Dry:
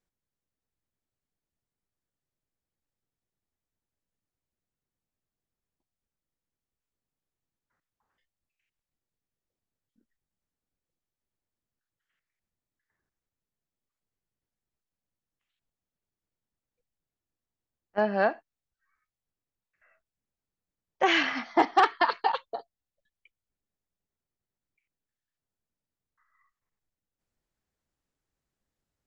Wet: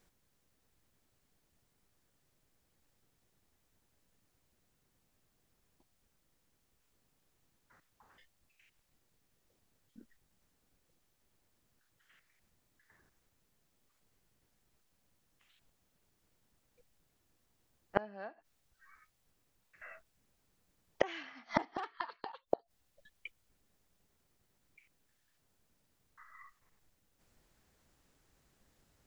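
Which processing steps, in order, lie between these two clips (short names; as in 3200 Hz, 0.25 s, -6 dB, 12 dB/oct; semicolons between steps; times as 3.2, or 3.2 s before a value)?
flipped gate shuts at -27 dBFS, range -36 dB; gain +14.5 dB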